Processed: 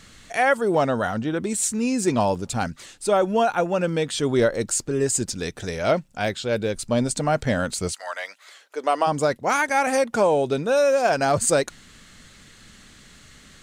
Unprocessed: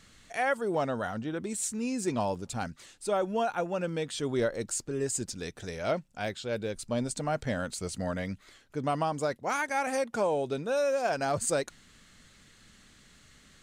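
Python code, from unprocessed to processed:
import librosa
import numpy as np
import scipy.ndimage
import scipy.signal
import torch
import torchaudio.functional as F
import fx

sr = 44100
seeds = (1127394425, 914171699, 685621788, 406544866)

y = fx.highpass(x, sr, hz=fx.line((7.91, 950.0), (9.06, 320.0)), slope=24, at=(7.91, 9.06), fade=0.02)
y = y * librosa.db_to_amplitude(9.0)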